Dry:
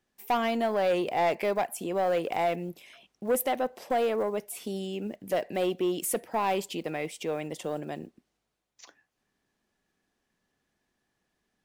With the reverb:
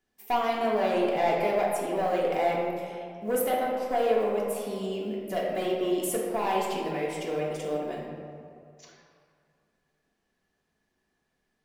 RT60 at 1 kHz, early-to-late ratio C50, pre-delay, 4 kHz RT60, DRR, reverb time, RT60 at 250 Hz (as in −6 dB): 2.0 s, 1.0 dB, 3 ms, 1.2 s, −4.0 dB, 2.1 s, 2.0 s